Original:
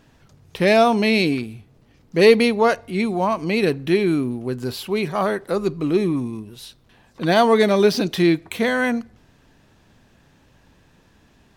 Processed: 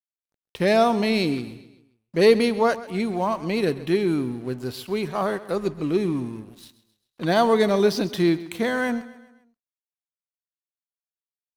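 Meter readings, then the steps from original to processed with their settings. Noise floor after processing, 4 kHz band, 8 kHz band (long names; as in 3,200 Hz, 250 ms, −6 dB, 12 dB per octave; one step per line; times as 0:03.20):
below −85 dBFS, −4.5 dB, −3.5 dB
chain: dynamic equaliser 2,500 Hz, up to −5 dB, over −36 dBFS, Q 2.2
dead-zone distortion −42.5 dBFS
on a send: repeating echo 132 ms, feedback 47%, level −17 dB
on the sum: level −3 dB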